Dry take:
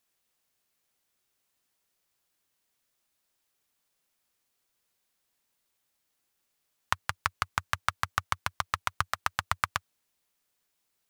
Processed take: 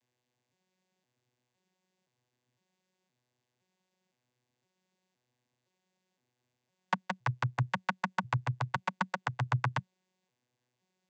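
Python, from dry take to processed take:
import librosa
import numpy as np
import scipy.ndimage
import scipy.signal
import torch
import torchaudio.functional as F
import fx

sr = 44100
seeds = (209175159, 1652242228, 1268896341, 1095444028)

y = fx.vocoder_arp(x, sr, chord='bare fifth', root=47, every_ms=514)
y = fx.peak_eq(y, sr, hz=1300.0, db=-11.0, octaves=0.21)
y = y * librosa.db_to_amplitude(1.5)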